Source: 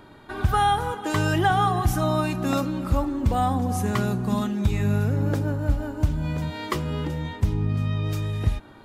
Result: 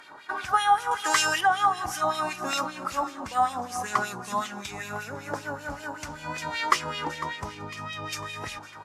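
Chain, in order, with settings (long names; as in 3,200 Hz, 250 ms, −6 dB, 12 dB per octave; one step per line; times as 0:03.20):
speech leveller within 5 dB 0.5 s
repeating echo 502 ms, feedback 55%, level −15 dB
auto-filter band-pass sine 5.2 Hz 910–2,800 Hz
0:00.91–0:01.41: high-shelf EQ 2,300 Hz +11 dB
tape wow and flutter 20 cents
flat-topped bell 8,000 Hz +15.5 dB
level +7.5 dB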